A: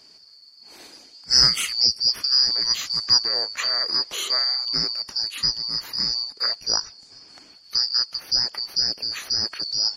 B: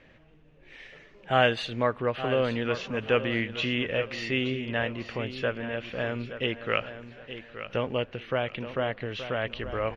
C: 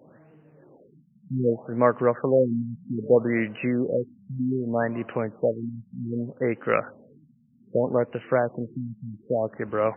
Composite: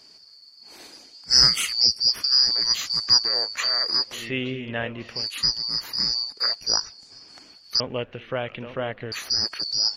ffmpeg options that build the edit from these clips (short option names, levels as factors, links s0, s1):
-filter_complex "[1:a]asplit=2[s0][s1];[0:a]asplit=3[s2][s3][s4];[s2]atrim=end=4.29[s5];[s0]atrim=start=4.05:end=5.29[s6];[s3]atrim=start=5.05:end=7.802[s7];[s1]atrim=start=7.798:end=9.122[s8];[s4]atrim=start=9.118[s9];[s5][s6]acrossfade=d=0.24:c1=tri:c2=tri[s10];[s10][s7]acrossfade=d=0.24:c1=tri:c2=tri[s11];[s11][s8]acrossfade=d=0.004:c1=hsin:c2=hsin[s12];[s12][s9]acrossfade=d=0.004:c1=hsin:c2=hsin"